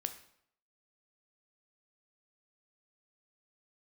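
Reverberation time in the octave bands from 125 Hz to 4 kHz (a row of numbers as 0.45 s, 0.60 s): 0.70 s, 0.65 s, 0.70 s, 0.70 s, 0.60 s, 0.55 s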